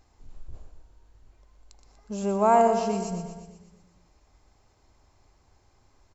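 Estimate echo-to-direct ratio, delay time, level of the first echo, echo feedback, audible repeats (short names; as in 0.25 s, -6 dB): -6.5 dB, 0.121 s, -8.5 dB, 59%, 6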